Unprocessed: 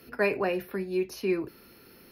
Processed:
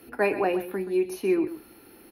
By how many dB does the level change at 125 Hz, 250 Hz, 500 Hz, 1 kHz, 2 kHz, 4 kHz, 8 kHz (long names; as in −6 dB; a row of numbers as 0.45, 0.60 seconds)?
−1.5, +4.5, +3.5, +5.5, +0.5, −1.5, +3.5 decibels